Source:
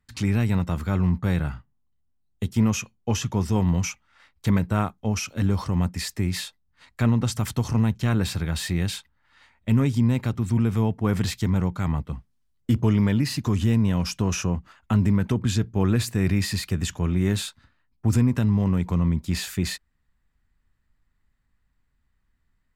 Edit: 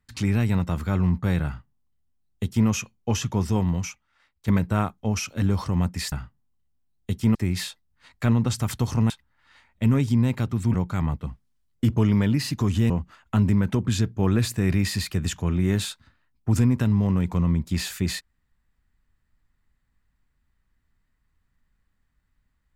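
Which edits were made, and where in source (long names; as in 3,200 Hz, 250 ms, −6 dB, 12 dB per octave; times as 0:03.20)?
0:01.45–0:02.68: duplicate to 0:06.12
0:03.50–0:04.48: fade out quadratic, to −9.5 dB
0:07.87–0:08.96: remove
0:10.60–0:11.60: remove
0:13.76–0:14.47: remove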